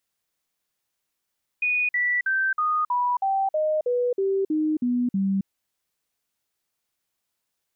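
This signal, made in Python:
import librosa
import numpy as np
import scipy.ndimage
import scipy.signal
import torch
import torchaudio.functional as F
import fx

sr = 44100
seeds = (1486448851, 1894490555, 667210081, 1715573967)

y = fx.stepped_sweep(sr, from_hz=2470.0, direction='down', per_octave=3, tones=12, dwell_s=0.27, gap_s=0.05, level_db=-20.0)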